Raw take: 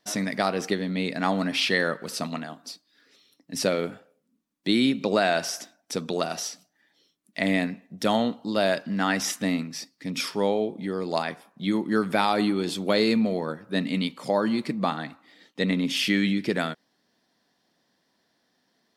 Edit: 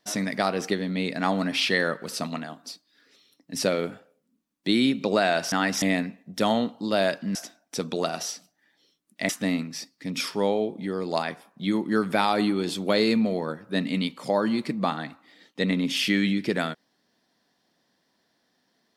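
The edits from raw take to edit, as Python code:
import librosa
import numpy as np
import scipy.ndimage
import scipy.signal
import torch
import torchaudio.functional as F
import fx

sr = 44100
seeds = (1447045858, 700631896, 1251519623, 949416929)

y = fx.edit(x, sr, fx.swap(start_s=5.52, length_s=1.94, other_s=8.99, other_length_s=0.3), tone=tone)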